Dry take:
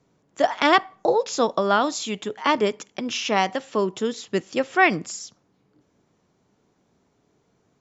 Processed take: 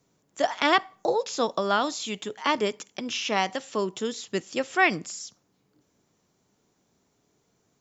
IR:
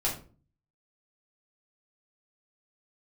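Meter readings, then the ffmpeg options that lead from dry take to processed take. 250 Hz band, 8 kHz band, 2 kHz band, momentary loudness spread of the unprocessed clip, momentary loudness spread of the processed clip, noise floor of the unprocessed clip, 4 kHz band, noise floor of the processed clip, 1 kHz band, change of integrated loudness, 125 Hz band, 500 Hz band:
-5.0 dB, n/a, -3.0 dB, 11 LU, 11 LU, -67 dBFS, -1.5 dB, -71 dBFS, -4.5 dB, -4.0 dB, -5.0 dB, -5.0 dB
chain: -filter_complex "[0:a]crystalizer=i=2.5:c=0,acrossover=split=4100[a][b];[b]acompressor=threshold=-32dB:ratio=4:attack=1:release=60[c];[a][c]amix=inputs=2:normalize=0,volume=-5dB"

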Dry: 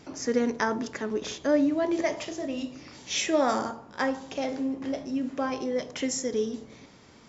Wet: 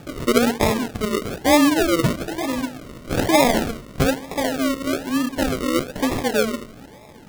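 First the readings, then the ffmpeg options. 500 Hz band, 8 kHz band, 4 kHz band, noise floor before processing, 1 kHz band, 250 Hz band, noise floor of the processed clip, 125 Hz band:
+6.5 dB, n/a, +9.0 dB, -53 dBFS, +9.0 dB, +8.0 dB, -43 dBFS, +19.5 dB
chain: -af "aeval=exprs='val(0)+0.002*sin(2*PI*860*n/s)':c=same,acrusher=samples=42:mix=1:aa=0.000001:lfo=1:lforange=25.2:lforate=1.1,volume=8dB"

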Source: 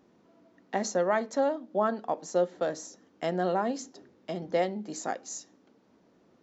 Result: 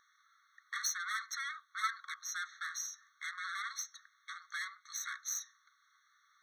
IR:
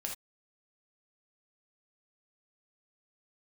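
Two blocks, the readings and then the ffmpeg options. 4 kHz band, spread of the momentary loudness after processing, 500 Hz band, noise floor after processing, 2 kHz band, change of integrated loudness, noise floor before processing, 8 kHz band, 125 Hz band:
+1.5 dB, 8 LU, under -40 dB, -72 dBFS, +1.5 dB, -9.0 dB, -64 dBFS, n/a, under -40 dB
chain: -af "aeval=exprs='(tanh(56.2*val(0)+0.5)-tanh(0.5))/56.2':c=same,afftfilt=real='re*eq(mod(floor(b*sr/1024/1100),2),1)':imag='im*eq(mod(floor(b*sr/1024/1100),2),1)':win_size=1024:overlap=0.75,volume=8.5dB"

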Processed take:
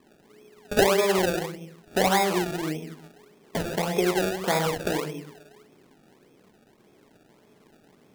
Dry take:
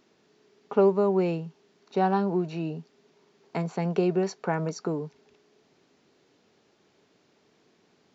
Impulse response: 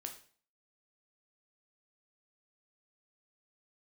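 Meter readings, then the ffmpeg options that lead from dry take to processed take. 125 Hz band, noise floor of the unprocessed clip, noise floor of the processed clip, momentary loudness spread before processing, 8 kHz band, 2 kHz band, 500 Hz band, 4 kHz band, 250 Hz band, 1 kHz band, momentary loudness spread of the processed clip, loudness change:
-1.5 dB, -66 dBFS, -59 dBFS, 12 LU, n/a, +11.5 dB, +1.0 dB, +16.0 dB, -1.0 dB, +3.5 dB, 14 LU, +2.0 dB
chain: -filter_complex "[0:a]tiltshelf=f=1.3k:g=5.5[a];[1:a]atrim=start_sample=2205,asetrate=28665,aresample=44100[b];[a][b]afir=irnorm=-1:irlink=0,acrossover=split=460|710[c][d][e];[c]acompressor=threshold=-34dB:ratio=6[f];[f][d][e]amix=inputs=3:normalize=0,acrusher=samples=29:mix=1:aa=0.000001:lfo=1:lforange=29:lforate=1.7,volume=4dB"

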